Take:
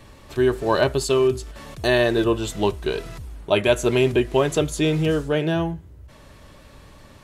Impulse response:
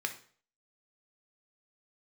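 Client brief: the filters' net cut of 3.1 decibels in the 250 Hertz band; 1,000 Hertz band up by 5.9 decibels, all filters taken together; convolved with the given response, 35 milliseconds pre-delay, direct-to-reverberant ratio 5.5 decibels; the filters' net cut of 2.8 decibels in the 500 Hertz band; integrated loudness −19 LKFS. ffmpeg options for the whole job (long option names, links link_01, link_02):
-filter_complex "[0:a]equalizer=frequency=250:width_type=o:gain=-3,equalizer=frequency=500:width_type=o:gain=-5,equalizer=frequency=1000:width_type=o:gain=8.5,asplit=2[link_01][link_02];[1:a]atrim=start_sample=2205,adelay=35[link_03];[link_02][link_03]afir=irnorm=-1:irlink=0,volume=-9dB[link_04];[link_01][link_04]amix=inputs=2:normalize=0,volume=2.5dB"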